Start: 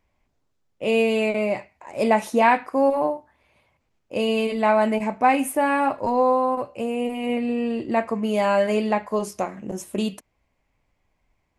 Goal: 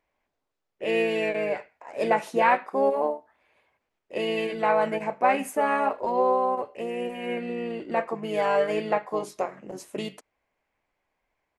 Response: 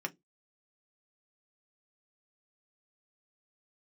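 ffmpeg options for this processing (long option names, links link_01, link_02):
-filter_complex "[0:a]asplit=2[link_01][link_02];[link_02]asetrate=33038,aresample=44100,atempo=1.33484,volume=-6dB[link_03];[link_01][link_03]amix=inputs=2:normalize=0,bass=frequency=250:gain=-14,treble=frequency=4000:gain=-6,volume=-3dB"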